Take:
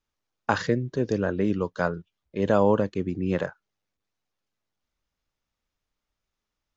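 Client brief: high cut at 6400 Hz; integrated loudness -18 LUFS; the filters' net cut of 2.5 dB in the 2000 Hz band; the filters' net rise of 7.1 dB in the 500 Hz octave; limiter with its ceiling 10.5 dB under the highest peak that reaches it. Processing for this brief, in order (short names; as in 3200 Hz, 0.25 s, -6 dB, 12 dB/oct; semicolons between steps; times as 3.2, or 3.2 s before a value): LPF 6400 Hz; bell 500 Hz +8.5 dB; bell 2000 Hz -4.5 dB; gain +8.5 dB; limiter -6 dBFS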